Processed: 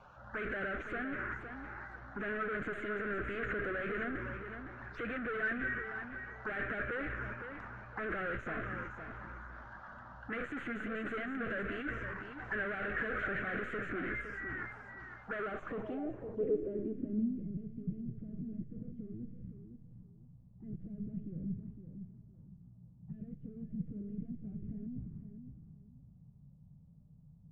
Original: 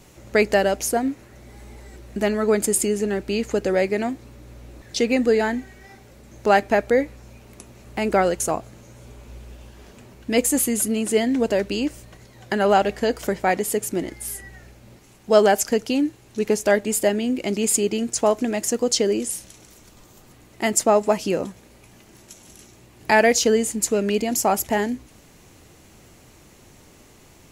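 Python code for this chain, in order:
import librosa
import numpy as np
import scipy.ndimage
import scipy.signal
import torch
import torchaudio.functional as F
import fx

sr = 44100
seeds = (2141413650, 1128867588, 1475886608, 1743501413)

y = fx.spec_quant(x, sr, step_db=15)
y = scipy.signal.sosfilt(scipy.signal.butter(4, 6400.0, 'lowpass', fs=sr, output='sos'), y)
y = fx.low_shelf(y, sr, hz=440.0, db=-10.5)
y = fx.transient(y, sr, attack_db=-1, sustain_db=11)
y = fx.tube_stage(y, sr, drive_db=33.0, bias=0.6)
y = np.clip(y, -10.0 ** (-39.0 / 20.0), 10.0 ** (-39.0 / 20.0))
y = fx.env_phaser(y, sr, low_hz=290.0, high_hz=2900.0, full_db=-33.0)
y = fx.over_compress(y, sr, threshold_db=-42.0, ratio=-1.0)
y = fx.echo_feedback(y, sr, ms=511, feedback_pct=25, wet_db=-8.5)
y = fx.filter_sweep_lowpass(y, sr, from_hz=1500.0, to_hz=160.0, start_s=15.35, end_s=17.52, q=4.2)
y = F.gain(torch.from_numpy(y), 3.0).numpy()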